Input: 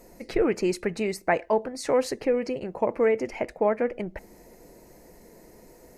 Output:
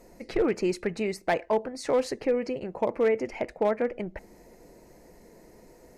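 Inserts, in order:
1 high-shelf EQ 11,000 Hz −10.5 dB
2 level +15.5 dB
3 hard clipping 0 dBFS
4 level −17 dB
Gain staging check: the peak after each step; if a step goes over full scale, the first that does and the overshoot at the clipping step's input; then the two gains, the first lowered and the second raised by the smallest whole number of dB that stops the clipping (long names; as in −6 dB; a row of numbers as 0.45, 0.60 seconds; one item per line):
−10.0, +5.5, 0.0, −17.0 dBFS
step 2, 5.5 dB
step 2 +9.5 dB, step 4 −11 dB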